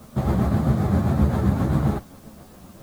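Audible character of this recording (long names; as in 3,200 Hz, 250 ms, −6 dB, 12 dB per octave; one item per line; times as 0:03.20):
tremolo triangle 7.6 Hz, depth 50%
a quantiser's noise floor 10 bits, dither triangular
a shimmering, thickened sound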